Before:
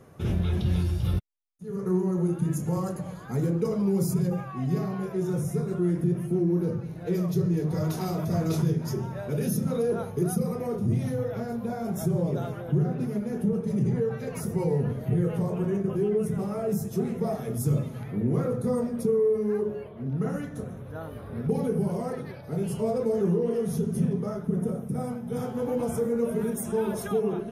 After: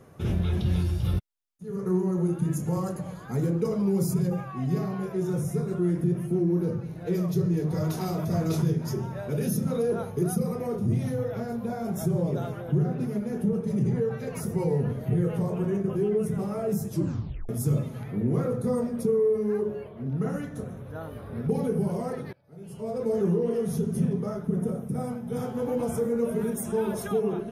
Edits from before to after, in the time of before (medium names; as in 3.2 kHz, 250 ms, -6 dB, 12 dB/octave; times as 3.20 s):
16.91 s: tape stop 0.58 s
22.33–23.13 s: fade in quadratic, from -23.5 dB